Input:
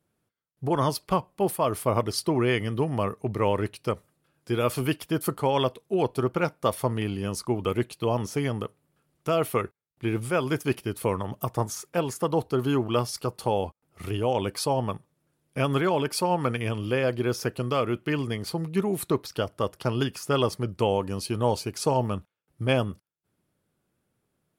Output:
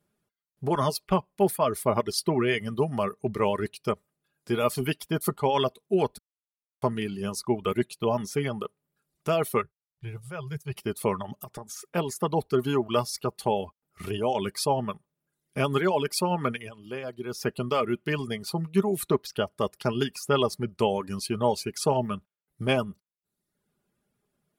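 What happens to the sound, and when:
0:06.18–0:06.82: silence
0:09.63–0:10.76: drawn EQ curve 150 Hz 0 dB, 240 Hz −27 dB, 470 Hz −12 dB
0:11.42–0:11.94: downward compressor 4 to 1, threshold −36 dBFS
0:16.51–0:17.48: duck −9 dB, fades 0.20 s
whole clip: reverb reduction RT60 0.77 s; comb filter 4.9 ms, depth 44%

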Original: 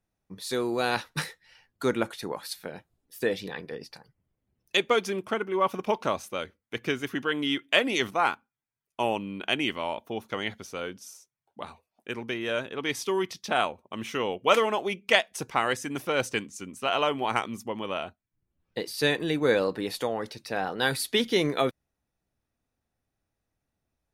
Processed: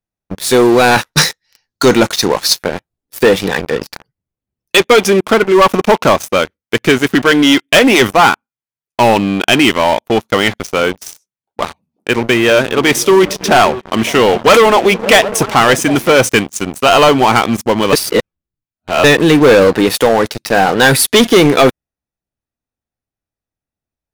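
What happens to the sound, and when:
0:01.13–0:02.59: flat-topped bell 5,100 Hz +11 dB 1 octave
0:11.06–0:16.22: echo through a band-pass that steps 187 ms, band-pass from 160 Hz, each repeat 0.7 octaves, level −9 dB
0:17.93–0:19.04: reverse
whole clip: dynamic equaliser 4,300 Hz, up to −6 dB, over −50 dBFS, Q 3.4; leveller curve on the samples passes 5; level +3.5 dB

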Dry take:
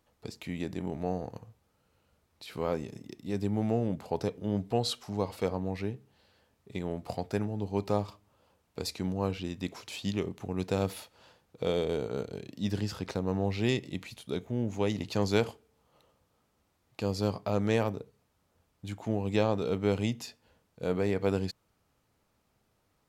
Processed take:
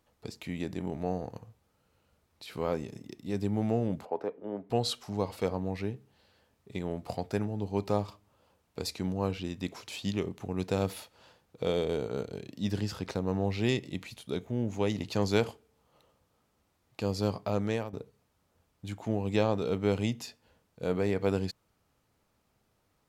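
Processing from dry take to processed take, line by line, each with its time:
0:04.05–0:04.70: three-way crossover with the lows and the highs turned down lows −24 dB, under 270 Hz, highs −24 dB, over 2,100 Hz
0:17.37–0:17.93: fade out equal-power, to −13.5 dB

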